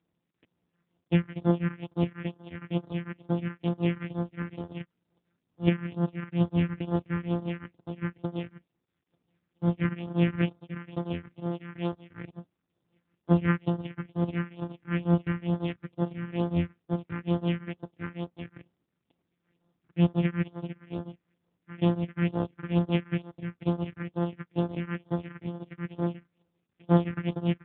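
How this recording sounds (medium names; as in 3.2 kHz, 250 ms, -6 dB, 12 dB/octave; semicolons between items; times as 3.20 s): a buzz of ramps at a fixed pitch in blocks of 256 samples; phasing stages 4, 2.2 Hz, lowest notch 650–2400 Hz; tremolo triangle 5.5 Hz, depth 95%; AMR-NB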